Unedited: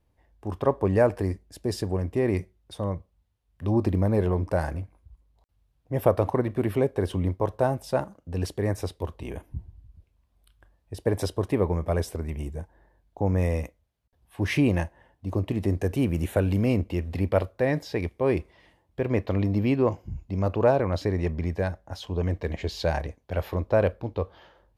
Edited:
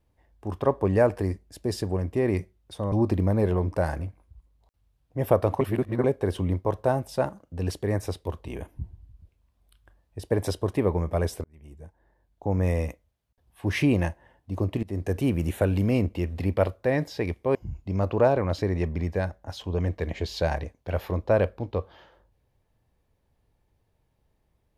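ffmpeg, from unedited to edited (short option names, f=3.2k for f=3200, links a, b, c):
-filter_complex "[0:a]asplit=7[a][b][c][d][e][f][g];[a]atrim=end=2.922[h];[b]atrim=start=3.668:end=6.362[i];[c]atrim=start=6.358:end=6.792,asetpts=PTS-STARTPTS,areverse[j];[d]atrim=start=6.788:end=12.19,asetpts=PTS-STARTPTS,afade=t=out:st=5.398:d=0.004:c=hsin[k];[e]atrim=start=12.19:end=15.58,asetpts=PTS-STARTPTS,afade=t=in:d=1.23,afade=t=out:st=3.386:d=0.004:c=hsin:silence=0.0794328[l];[f]atrim=start=15.58:end=18.302,asetpts=PTS-STARTPTS,afade=t=in:d=0.38:c=qsin:silence=0.0794328[m];[g]atrim=start=19.978[n];[h][i]acrossfade=d=0.004:c1=hsin:c2=hsin[o];[o][j]acrossfade=d=0.004:c1=hsin:c2=hsin[p];[k][l][m]concat=n=3:v=0:a=1[q];[p][q]acrossfade=d=0.004:c1=hsin:c2=hsin[r];[r][n]acrossfade=d=0.004:c1=hsin:c2=hsin"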